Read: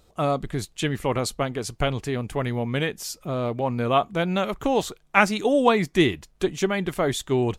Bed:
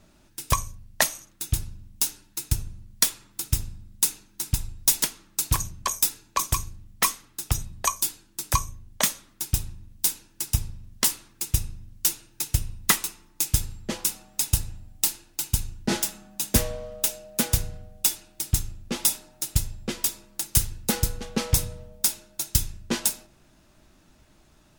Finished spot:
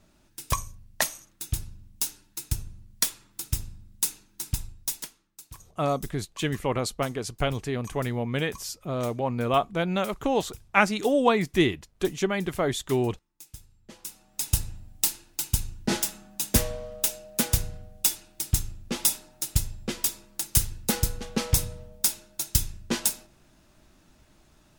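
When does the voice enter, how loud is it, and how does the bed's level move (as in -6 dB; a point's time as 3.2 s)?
5.60 s, -2.5 dB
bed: 4.6 s -4 dB
5.47 s -22.5 dB
13.7 s -22.5 dB
14.56 s -1 dB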